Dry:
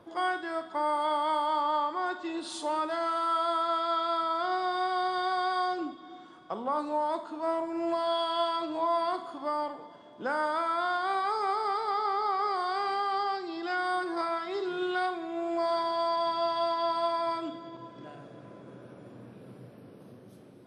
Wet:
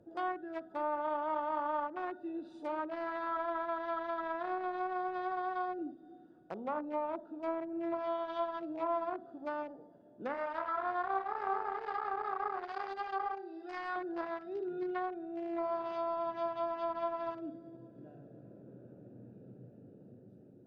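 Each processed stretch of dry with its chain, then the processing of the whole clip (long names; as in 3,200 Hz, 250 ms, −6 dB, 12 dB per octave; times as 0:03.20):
0:10.34–0:13.96: high-pass filter 620 Hz 6 dB per octave + flutter between parallel walls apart 5.3 metres, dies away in 0.4 s
whole clip: adaptive Wiener filter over 41 samples; treble cut that deepens with the level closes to 1,600 Hz, closed at −28 dBFS; level −3.5 dB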